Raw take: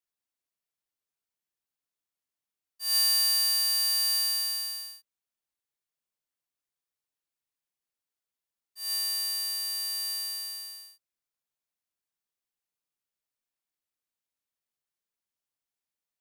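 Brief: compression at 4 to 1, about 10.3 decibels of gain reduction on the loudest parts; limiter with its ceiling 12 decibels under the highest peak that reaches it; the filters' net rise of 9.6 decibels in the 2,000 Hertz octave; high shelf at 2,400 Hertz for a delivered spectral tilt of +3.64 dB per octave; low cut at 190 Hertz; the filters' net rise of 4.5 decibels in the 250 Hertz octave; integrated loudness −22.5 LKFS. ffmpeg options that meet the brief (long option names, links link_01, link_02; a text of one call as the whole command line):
ffmpeg -i in.wav -af "highpass=190,equalizer=frequency=250:width_type=o:gain=7,equalizer=frequency=2000:width_type=o:gain=7.5,highshelf=frequency=2400:gain=7.5,acompressor=threshold=-28dB:ratio=4,volume=14dB,alimiter=limit=-19.5dB:level=0:latency=1" out.wav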